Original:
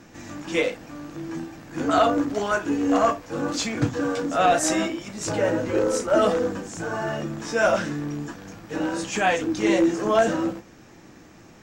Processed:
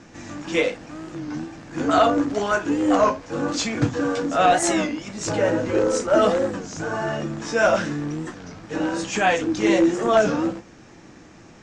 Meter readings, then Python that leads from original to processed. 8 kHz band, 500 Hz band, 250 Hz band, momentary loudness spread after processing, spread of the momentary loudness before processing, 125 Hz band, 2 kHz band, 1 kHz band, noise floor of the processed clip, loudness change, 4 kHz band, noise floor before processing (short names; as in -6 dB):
+1.0 dB, +2.0 dB, +2.0 dB, 14 LU, 14 LU, +2.0 dB, +2.0 dB, +2.0 dB, -47 dBFS, +2.0 dB, +2.0 dB, -49 dBFS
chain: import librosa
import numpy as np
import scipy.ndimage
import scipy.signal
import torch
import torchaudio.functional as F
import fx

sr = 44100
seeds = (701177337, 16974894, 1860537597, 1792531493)

y = scipy.signal.sosfilt(scipy.signal.butter(4, 8200.0, 'lowpass', fs=sr, output='sos'), x)
y = fx.record_warp(y, sr, rpm=33.33, depth_cents=160.0)
y = F.gain(torch.from_numpy(y), 2.0).numpy()